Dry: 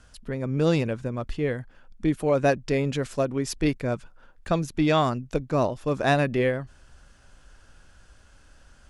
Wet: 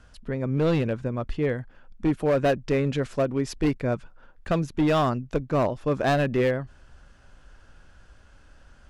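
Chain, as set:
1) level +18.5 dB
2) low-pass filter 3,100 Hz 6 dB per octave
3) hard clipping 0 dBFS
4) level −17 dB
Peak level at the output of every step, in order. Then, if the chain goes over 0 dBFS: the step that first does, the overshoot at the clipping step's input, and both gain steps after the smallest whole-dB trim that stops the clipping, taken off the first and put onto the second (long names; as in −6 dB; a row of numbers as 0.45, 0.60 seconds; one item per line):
+9.0, +8.5, 0.0, −17.0 dBFS
step 1, 8.5 dB
step 1 +9.5 dB, step 4 −8 dB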